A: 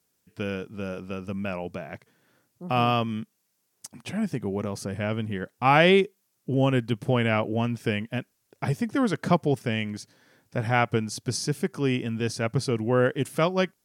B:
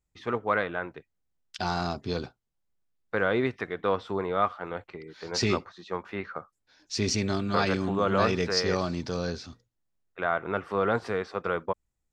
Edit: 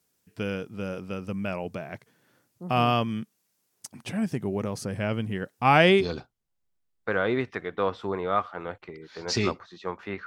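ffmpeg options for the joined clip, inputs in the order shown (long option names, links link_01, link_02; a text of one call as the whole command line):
ffmpeg -i cue0.wav -i cue1.wav -filter_complex "[0:a]apad=whole_dur=10.26,atrim=end=10.26,atrim=end=6.16,asetpts=PTS-STARTPTS[link_01];[1:a]atrim=start=1.9:end=6.32,asetpts=PTS-STARTPTS[link_02];[link_01][link_02]acrossfade=duration=0.32:curve1=qsin:curve2=qsin" out.wav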